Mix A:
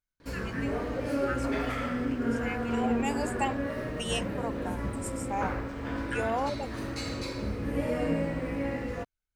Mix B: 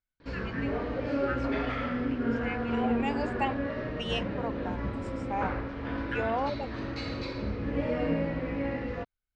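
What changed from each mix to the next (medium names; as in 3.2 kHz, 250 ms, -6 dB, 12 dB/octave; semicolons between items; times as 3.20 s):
master: add low-pass 4.5 kHz 24 dB/octave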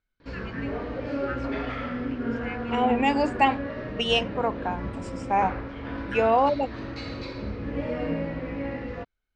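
second voice +10.0 dB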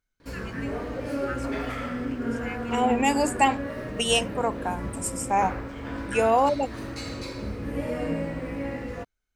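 master: remove low-pass 4.5 kHz 24 dB/octave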